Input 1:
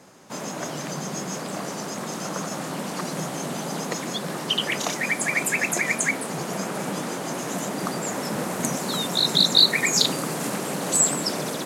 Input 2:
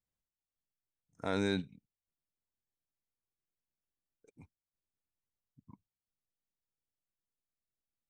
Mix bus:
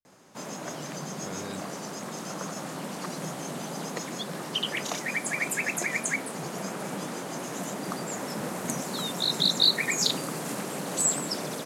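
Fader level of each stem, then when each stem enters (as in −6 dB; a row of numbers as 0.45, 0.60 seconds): −5.5, −8.0 decibels; 0.05, 0.00 seconds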